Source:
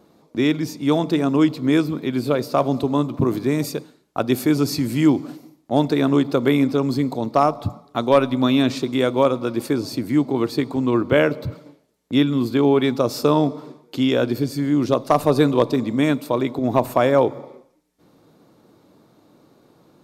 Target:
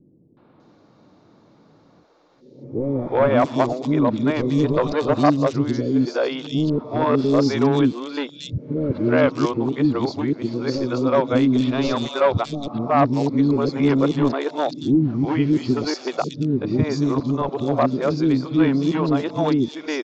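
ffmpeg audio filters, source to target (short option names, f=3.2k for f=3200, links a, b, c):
-filter_complex "[0:a]areverse,lowpass=f=5.9k:w=0.5412,lowpass=f=5.9k:w=1.3066,aresample=16000,volume=10.5dB,asoftclip=hard,volume=-10.5dB,aresample=44100,acrossover=split=390|3300[a][b][c];[b]adelay=370[d];[c]adelay=600[e];[a][d][e]amix=inputs=3:normalize=0,adynamicequalizer=threshold=0.00631:dfrequency=2200:dqfactor=1.3:tfrequency=2200:tqfactor=1.3:attack=5:release=100:ratio=0.375:range=2:mode=cutabove:tftype=bell,volume=2dB"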